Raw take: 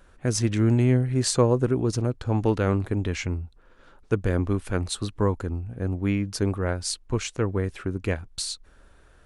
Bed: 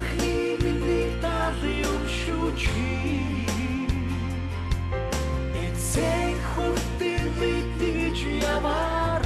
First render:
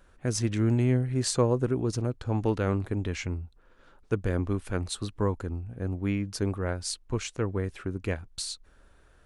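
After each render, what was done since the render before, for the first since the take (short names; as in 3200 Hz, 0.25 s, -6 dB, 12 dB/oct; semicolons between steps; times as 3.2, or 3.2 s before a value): gain -4 dB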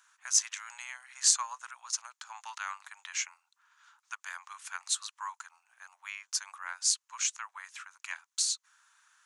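steep high-pass 940 Hz 48 dB/oct; bell 6600 Hz +12 dB 0.57 oct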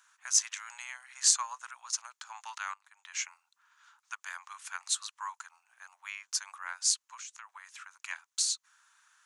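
2.74–3.25 fade in quadratic, from -16 dB; 7.02–7.82 compressor 4:1, threshold -44 dBFS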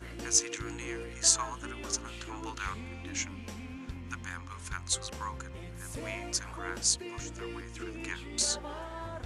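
add bed -16 dB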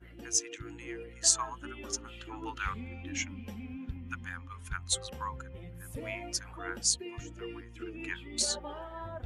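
per-bin expansion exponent 1.5; vocal rider within 4 dB 2 s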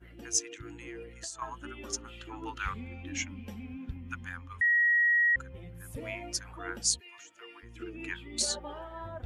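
0.49–1.42 compressor, threshold -38 dBFS; 4.61–5.36 bleep 1900 Hz -21.5 dBFS; 6.99–7.62 HPF 1400 Hz -> 660 Hz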